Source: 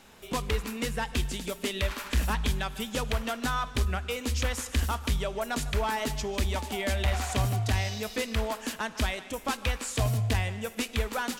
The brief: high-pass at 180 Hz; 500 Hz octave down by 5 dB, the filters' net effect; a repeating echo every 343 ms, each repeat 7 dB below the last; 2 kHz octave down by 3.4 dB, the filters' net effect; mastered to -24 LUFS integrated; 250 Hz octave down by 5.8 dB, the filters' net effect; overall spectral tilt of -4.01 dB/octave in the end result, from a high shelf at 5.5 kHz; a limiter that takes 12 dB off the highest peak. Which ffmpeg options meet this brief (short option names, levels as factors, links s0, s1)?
-af "highpass=180,equalizer=f=250:t=o:g=-4,equalizer=f=500:t=o:g=-5,equalizer=f=2000:t=o:g=-3.5,highshelf=f=5500:g=-4,alimiter=level_in=2.11:limit=0.0631:level=0:latency=1,volume=0.473,aecho=1:1:343|686|1029|1372|1715:0.447|0.201|0.0905|0.0407|0.0183,volume=5.96"